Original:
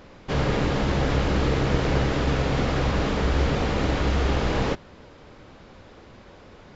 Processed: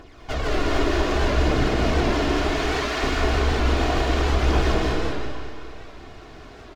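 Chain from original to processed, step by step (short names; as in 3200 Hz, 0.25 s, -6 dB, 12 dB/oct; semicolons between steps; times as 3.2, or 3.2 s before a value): minimum comb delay 2.8 ms; 2.51–3.03 HPF 980 Hz; limiter -19 dBFS, peak gain reduction 10 dB; phaser 0.66 Hz, delay 3.4 ms, feedback 49%; echo 0.207 s -5.5 dB; digital reverb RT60 2.3 s, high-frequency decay 0.9×, pre-delay 0.115 s, DRR -2 dB; record warp 78 rpm, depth 100 cents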